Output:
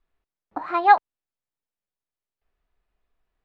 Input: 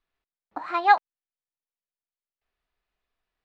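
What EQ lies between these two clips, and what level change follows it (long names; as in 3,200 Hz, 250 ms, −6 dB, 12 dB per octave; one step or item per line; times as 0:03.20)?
spectral tilt −3 dB per octave
low-shelf EQ 220 Hz −7 dB
+3.0 dB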